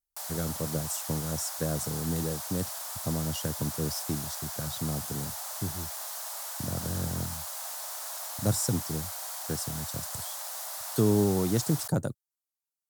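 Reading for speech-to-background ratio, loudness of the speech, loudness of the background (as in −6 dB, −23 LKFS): 3.0 dB, −32.5 LKFS, −35.5 LKFS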